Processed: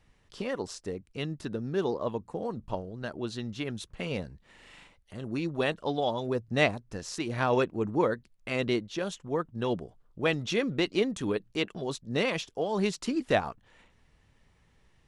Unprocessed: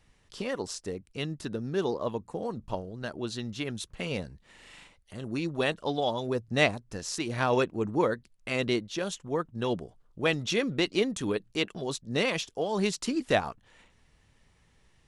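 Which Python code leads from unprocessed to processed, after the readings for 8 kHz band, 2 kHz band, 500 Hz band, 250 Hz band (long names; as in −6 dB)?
−5.0 dB, −1.5 dB, 0.0 dB, 0.0 dB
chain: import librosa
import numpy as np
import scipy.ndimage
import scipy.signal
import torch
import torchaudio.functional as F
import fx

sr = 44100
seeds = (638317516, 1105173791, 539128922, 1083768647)

y = fx.high_shelf(x, sr, hz=4100.0, db=-6.5)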